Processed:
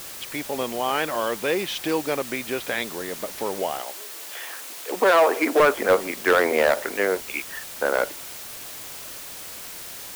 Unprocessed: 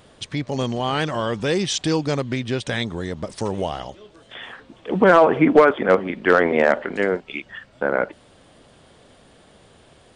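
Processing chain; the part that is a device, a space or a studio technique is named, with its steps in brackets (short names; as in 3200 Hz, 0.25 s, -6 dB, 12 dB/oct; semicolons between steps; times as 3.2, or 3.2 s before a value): drive-through speaker (BPF 370–2900 Hz; bell 2400 Hz +5 dB 0.22 oct; hard clip -11 dBFS, distortion -13 dB; white noise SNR 13 dB); 3.81–5.6 Bessel high-pass 340 Hz, order 8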